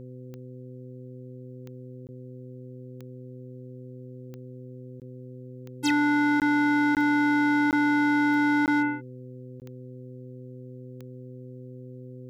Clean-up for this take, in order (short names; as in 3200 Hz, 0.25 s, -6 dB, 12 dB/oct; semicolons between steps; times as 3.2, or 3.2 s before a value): clip repair -19 dBFS; de-click; de-hum 126.7 Hz, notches 4; interpolate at 2.07/5/6.4/6.95/7.71/8.66/9.6, 18 ms